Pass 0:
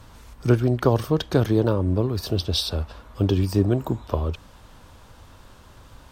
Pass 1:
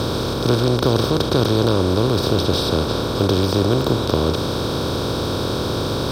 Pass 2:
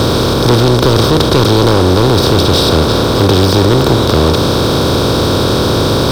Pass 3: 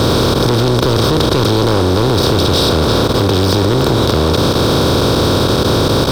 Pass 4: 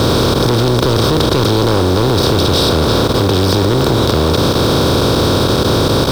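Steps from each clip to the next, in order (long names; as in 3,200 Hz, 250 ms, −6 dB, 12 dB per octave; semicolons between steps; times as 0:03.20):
compressor on every frequency bin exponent 0.2; level −3.5 dB
leveller curve on the samples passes 3
output level in coarse steps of 12 dB
bit reduction 6 bits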